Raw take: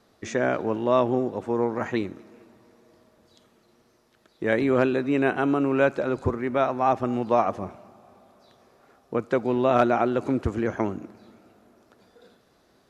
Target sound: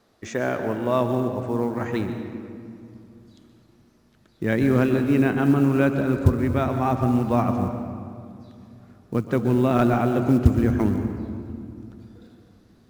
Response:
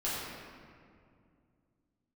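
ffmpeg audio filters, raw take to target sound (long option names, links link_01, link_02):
-filter_complex "[0:a]asubboost=boost=4.5:cutoff=240,acrusher=bits=8:mode=log:mix=0:aa=0.000001,asplit=2[link_01][link_02];[1:a]atrim=start_sample=2205,adelay=122[link_03];[link_02][link_03]afir=irnorm=-1:irlink=0,volume=-13.5dB[link_04];[link_01][link_04]amix=inputs=2:normalize=0,volume=-1dB"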